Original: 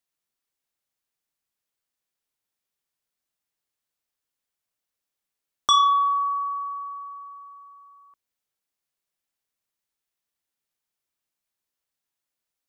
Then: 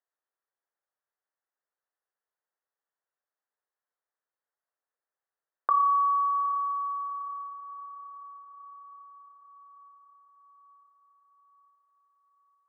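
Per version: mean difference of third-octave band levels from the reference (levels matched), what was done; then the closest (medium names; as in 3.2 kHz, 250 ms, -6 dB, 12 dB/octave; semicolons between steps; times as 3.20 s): 2.0 dB: steep low-pass 1.9 kHz 72 dB/octave; compression 2:1, threshold -24 dBFS, peak gain reduction 5 dB; high-pass 410 Hz 24 dB/octave; on a send: echo that smears into a reverb 809 ms, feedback 55%, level -15.5 dB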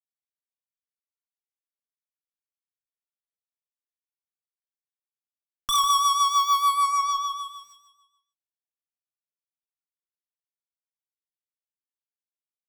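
8.5 dB: high-pass 890 Hz 12 dB/octave; fuzz box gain 39 dB, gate -47 dBFS; rotary cabinet horn 6.7 Hz; on a send: feedback delay 148 ms, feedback 40%, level -9.5 dB; on the sum: trim -3.5 dB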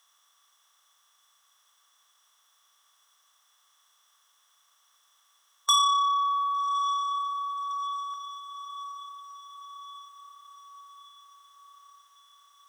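4.5 dB: spectral levelling over time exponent 0.6; high-pass 1.2 kHz 12 dB/octave; on a send: echo that smears into a reverb 1163 ms, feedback 56%, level -14 dB; on the sum: transformer saturation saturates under 3.9 kHz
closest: first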